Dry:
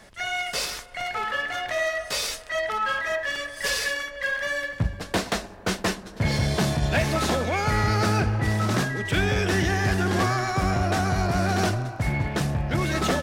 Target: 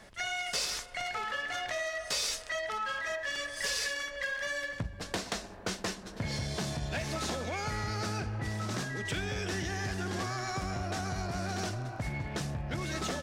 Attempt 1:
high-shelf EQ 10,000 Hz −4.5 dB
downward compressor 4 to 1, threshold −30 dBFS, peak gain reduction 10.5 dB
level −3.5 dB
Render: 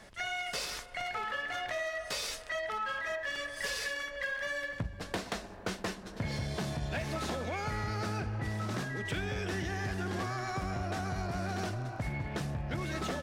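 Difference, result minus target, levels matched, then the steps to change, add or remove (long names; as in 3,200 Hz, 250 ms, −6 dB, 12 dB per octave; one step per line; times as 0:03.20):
8,000 Hz band −5.0 dB
add after downward compressor: dynamic equaliser 6,400 Hz, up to +7 dB, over −52 dBFS, Q 0.75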